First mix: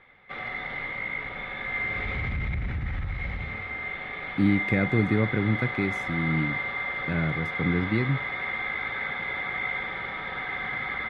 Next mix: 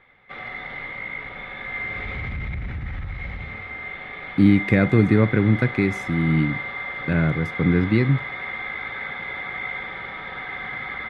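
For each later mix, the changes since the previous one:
speech +7.0 dB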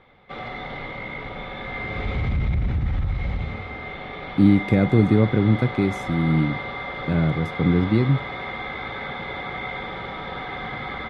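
background +7.5 dB; master: add bell 1900 Hz -12 dB 1.1 oct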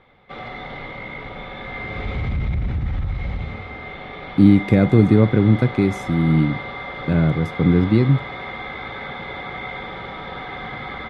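speech +3.5 dB

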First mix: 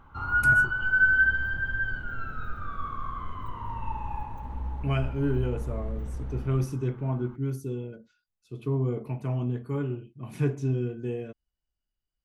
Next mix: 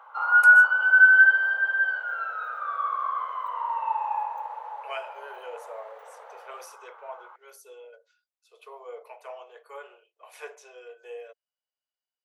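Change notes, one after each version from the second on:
background: add bell 840 Hz +9.5 dB 2.4 oct; master: add steep high-pass 480 Hz 72 dB/oct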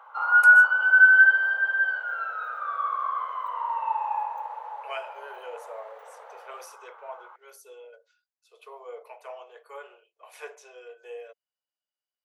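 none

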